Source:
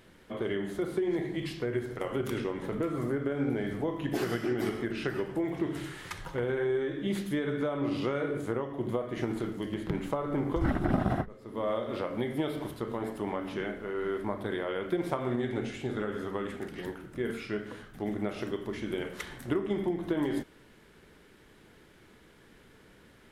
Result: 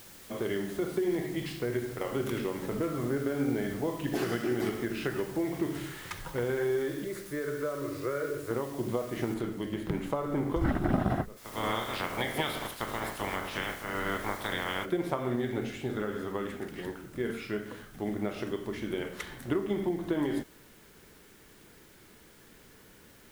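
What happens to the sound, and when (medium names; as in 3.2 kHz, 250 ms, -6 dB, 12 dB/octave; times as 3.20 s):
0.64–4.63 s: delay 74 ms -12 dB
7.04–8.51 s: static phaser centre 820 Hz, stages 6
9.34 s: noise floor step -52 dB -61 dB
11.36–14.84 s: spectral peaks clipped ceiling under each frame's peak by 22 dB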